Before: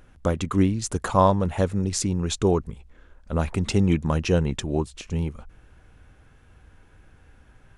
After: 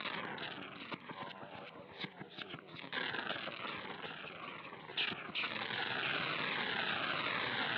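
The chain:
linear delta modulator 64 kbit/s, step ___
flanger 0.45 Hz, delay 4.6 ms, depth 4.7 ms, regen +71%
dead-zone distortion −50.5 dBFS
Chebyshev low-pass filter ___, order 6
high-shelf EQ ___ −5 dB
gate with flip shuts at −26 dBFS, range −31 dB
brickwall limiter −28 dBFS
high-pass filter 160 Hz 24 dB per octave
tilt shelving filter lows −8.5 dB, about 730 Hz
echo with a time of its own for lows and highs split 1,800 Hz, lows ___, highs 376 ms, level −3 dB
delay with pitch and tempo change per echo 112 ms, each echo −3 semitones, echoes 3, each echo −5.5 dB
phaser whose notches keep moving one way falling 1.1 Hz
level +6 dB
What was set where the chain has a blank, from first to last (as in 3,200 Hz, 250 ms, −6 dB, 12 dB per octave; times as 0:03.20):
−27.5 dBFS, 3,900 Hz, 2,600 Hz, 171 ms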